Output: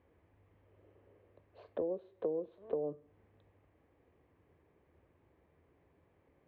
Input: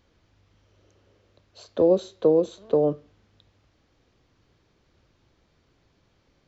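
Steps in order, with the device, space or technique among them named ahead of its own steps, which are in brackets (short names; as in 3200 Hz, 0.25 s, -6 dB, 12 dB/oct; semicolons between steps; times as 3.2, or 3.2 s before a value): bass amplifier (compressor 4:1, threshold -35 dBFS, peak gain reduction 17.5 dB; speaker cabinet 77–2100 Hz, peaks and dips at 80 Hz +4 dB, 120 Hz -7 dB, 210 Hz -6 dB, 440 Hz +3 dB, 1400 Hz -9 dB); gain -2.5 dB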